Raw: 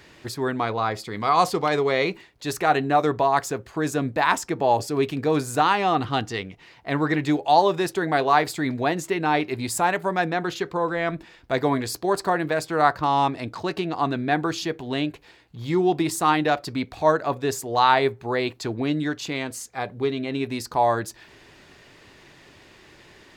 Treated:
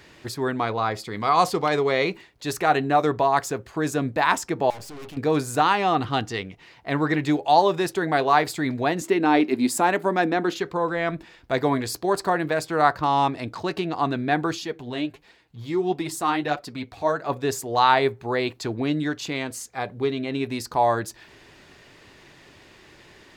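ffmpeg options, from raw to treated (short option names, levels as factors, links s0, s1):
-filter_complex "[0:a]asettb=1/sr,asplit=3[s0][s1][s2];[s0]atrim=end=4.704[s3];[s1]atrim=start=4.7:end=5.17,asetpts=PTS-STARTPTS,afade=t=in:d=0.004:c=qsin,afade=t=out:st=0.466:d=0.004:c=qsin,aeval=exprs='(tanh(79.4*val(0)+0.6)-tanh(0.6))/79.4':c=same[s4];[s2]atrim=start=5.166[s5];[s3][s4]acrossfade=d=0.004:c1=hsin:c2=qsin[s6];[s6][s5]acrossfade=d=0.004:c1=qsin:c2=hsin,asettb=1/sr,asplit=3[s7][s8][s9];[s7]atrim=end=9.014[s10];[s8]atrim=start=9.01:end=10.57,asetpts=PTS-STARTPTS,afade=t=in:d=0.004:c=qsin,afade=t=out:st=1.556:d=0.004:c=qsin,highpass=f=250:t=q:w=3.1[s11];[s9]atrim=start=10.566[s12];[s10][s11]acrossfade=d=0.004:c1=hsin:c2=qsin[s13];[s13][s12]acrossfade=d=0.004:c1=qsin:c2=hsin,asplit=3[s14][s15][s16];[s14]afade=t=out:st=14.55:d=0.02[s17];[s15]flanger=delay=3.6:depth=7.2:regen=31:speed=1.5:shape=triangular,afade=t=in:st=14.55:d=0.02,afade=t=out:st=17.28:d=0.02[s18];[s16]afade=t=in:st=17.28:d=0.02[s19];[s17][s18][s19]amix=inputs=3:normalize=0"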